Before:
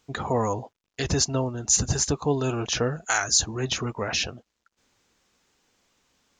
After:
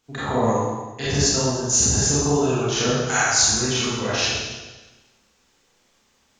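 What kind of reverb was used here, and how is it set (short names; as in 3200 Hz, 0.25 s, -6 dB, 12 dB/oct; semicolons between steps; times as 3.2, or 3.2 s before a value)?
Schroeder reverb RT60 1.2 s, combs from 28 ms, DRR -9.5 dB; gain -4.5 dB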